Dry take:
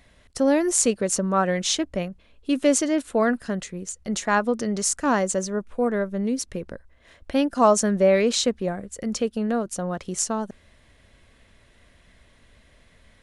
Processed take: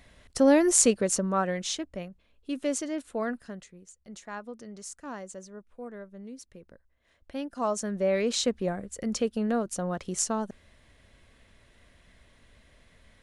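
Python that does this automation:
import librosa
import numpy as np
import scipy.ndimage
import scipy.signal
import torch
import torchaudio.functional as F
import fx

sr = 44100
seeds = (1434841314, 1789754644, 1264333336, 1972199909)

y = fx.gain(x, sr, db=fx.line((0.81, 0.0), (1.88, -10.0), (3.32, -10.0), (3.83, -18.0), (6.55, -18.0), (7.8, -11.0), (8.6, -3.0)))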